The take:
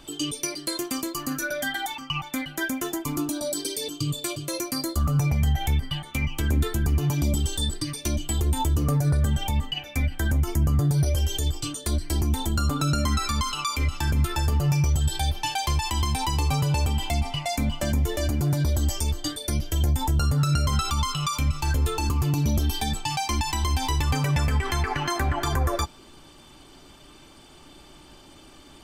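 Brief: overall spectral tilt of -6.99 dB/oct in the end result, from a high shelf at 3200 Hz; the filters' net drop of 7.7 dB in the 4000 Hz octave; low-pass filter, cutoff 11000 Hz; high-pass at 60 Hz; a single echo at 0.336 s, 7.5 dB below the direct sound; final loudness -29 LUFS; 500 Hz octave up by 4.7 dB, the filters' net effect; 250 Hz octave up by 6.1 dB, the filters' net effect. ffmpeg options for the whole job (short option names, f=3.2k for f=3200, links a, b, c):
-af "highpass=60,lowpass=11k,equalizer=f=250:t=o:g=7.5,equalizer=f=500:t=o:g=4,highshelf=f=3.2k:g=-8.5,equalizer=f=4k:t=o:g=-4,aecho=1:1:336:0.422,volume=-4.5dB"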